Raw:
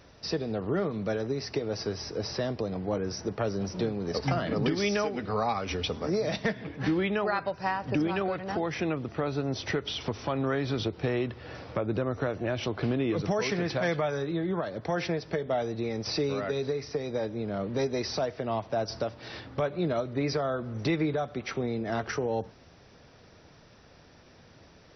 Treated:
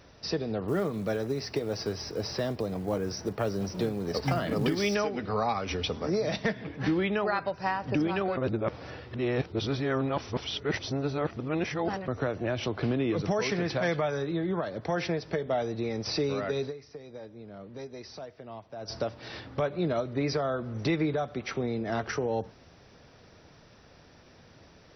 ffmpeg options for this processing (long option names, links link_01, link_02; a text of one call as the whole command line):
ffmpeg -i in.wav -filter_complex "[0:a]asettb=1/sr,asplit=3[link_01][link_02][link_03];[link_01]atrim=end=0.684[link_04];[link_02]atrim=start=0.68:end=4.95,asetpts=PTS-STARTPTS,afade=type=in:duration=0.004:curve=qsin,afade=type=out:start_time=4.266:duration=0.004:curve=qsin,acrusher=bits=7:mode=log:mix=0:aa=0.000001[link_05];[link_03]atrim=start=4.946[link_06];[link_04][link_05]acrossfade=duration=0.004:curve1=hsin:curve2=qsin[link_07];[link_07][link_06]acrossfade=duration=0.004:curve1=qsin:curve2=hsin,asplit=5[link_08][link_09][link_10][link_11][link_12];[link_08]atrim=end=8.372[link_13];[link_09]atrim=start=8.368:end=12.082,asetpts=PTS-STARTPTS,areverse[link_14];[link_10]atrim=start=12.078:end=16.78,asetpts=PTS-STARTPTS,afade=type=out:start_time=4.562:duration=0.14:curve=qua:silence=0.237137[link_15];[link_11]atrim=start=16.78:end=18.77,asetpts=PTS-STARTPTS,volume=-12.5dB[link_16];[link_12]atrim=start=18.77,asetpts=PTS-STARTPTS,afade=type=in:duration=0.14:curve=qua:silence=0.237137[link_17];[link_13][link_14]acrossfade=duration=0.004:curve1=hsin:curve2=hsin[link_18];[link_15][link_16][link_17]concat=n=3:v=0:a=1[link_19];[link_18][link_19]acrossfade=duration=0.004:curve1=hsin:curve2=hsin" out.wav